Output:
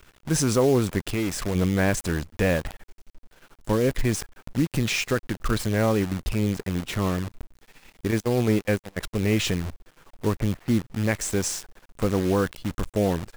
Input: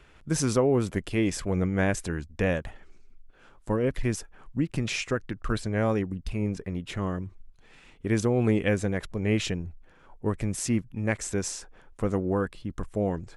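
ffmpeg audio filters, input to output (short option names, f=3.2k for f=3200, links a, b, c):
-filter_complex "[0:a]asplit=3[a][b][c];[a]afade=t=out:st=8.1:d=0.02[d];[b]agate=range=-32dB:threshold=-22dB:ratio=16:detection=peak,afade=t=in:st=8.1:d=0.02,afade=t=out:st=8.96:d=0.02[e];[c]afade=t=in:st=8.96:d=0.02[f];[d][e][f]amix=inputs=3:normalize=0,asettb=1/sr,asplit=3[g][h][i];[g]atrim=end=10.374[j];[h]atrim=start=10.37:end=11.04,asetpts=PTS-STARTPTS,afade=t=in:d=0.004:c=qsin,afade=t=out:st=0.666:d=0.004:c=qsin,lowpass=f=2k:w=0.5412,lowpass=f=2k:w=1.3066[k];[i]atrim=start=11.036[l];[j][k]acrossfade=d=0.004:c1=hsin:c2=qsin[m];[m][l]acrossfade=d=0.004:c1=qsin:c2=hsin,asplit=2[n][o];[o]alimiter=limit=-19.5dB:level=0:latency=1:release=24,volume=2dB[p];[n][p]amix=inputs=2:normalize=0,asettb=1/sr,asplit=3[q][r][s];[q]atrim=end=1.054[t];[r]atrim=start=1.05:end=1.55,asetpts=PTS-STARTPTS,afade=t=in:d=0.004:c=qsin,afade=t=out:st=0.496:d=0.004:c=qsin,acompressor=threshold=-24dB:ratio=2[u];[s]atrim=start=1.546[v];[t][u]acrossfade=d=0.004:c1=hsin:c2=qsin[w];[w][v]acrossfade=d=0.004:c1=qsin:c2=hsin,acrusher=bits=6:dc=4:mix=0:aa=0.000001,volume=-2dB"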